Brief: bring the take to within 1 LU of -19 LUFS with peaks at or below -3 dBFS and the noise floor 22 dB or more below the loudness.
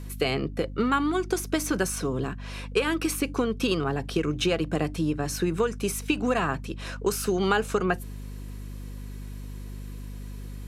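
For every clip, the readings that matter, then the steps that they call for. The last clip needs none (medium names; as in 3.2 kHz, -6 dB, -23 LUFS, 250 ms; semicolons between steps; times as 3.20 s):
hum 50 Hz; highest harmonic 250 Hz; hum level -35 dBFS; loudness -27.0 LUFS; peak level -9.5 dBFS; loudness target -19.0 LUFS
-> de-hum 50 Hz, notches 5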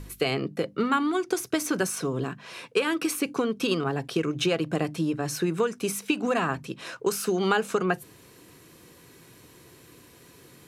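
hum not found; loudness -27.5 LUFS; peak level -10.0 dBFS; loudness target -19.0 LUFS
-> trim +8.5 dB; peak limiter -3 dBFS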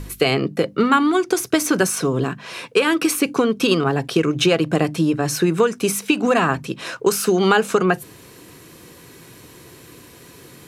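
loudness -19.0 LUFS; peak level -3.0 dBFS; noise floor -45 dBFS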